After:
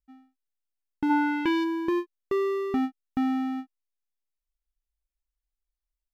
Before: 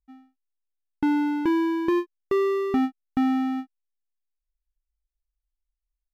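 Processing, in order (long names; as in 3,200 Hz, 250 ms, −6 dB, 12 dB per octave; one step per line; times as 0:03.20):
0:01.09–0:01.63: parametric band 890 Hz → 4,300 Hz +12 dB 1.8 octaves
level −3.5 dB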